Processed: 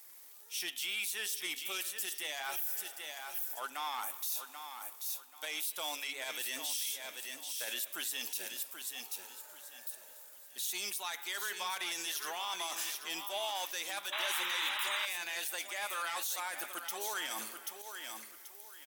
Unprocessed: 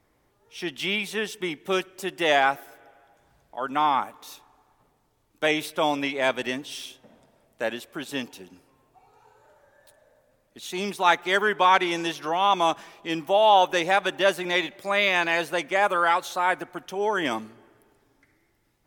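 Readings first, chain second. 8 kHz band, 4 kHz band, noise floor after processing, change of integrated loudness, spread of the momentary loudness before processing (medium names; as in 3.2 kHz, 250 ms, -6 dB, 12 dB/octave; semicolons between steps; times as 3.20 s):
+4.0 dB, -6.5 dB, -54 dBFS, -12.5 dB, 14 LU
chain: RIAA curve recording; reverse; compression 4:1, threshold -35 dBFS, peak gain reduction 18 dB; reverse; saturation -28.5 dBFS, distortion -16 dB; de-hum 140.5 Hz, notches 28; on a send: feedback delay 784 ms, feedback 28%, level -9 dB; on the sum: crackle 150 per s -52 dBFS; tilt EQ +3 dB/octave; peak limiter -26.5 dBFS, peak gain reduction 9.5 dB; painted sound noise, 14.12–15.06 s, 820–4000 Hz -36 dBFS; trim -1 dB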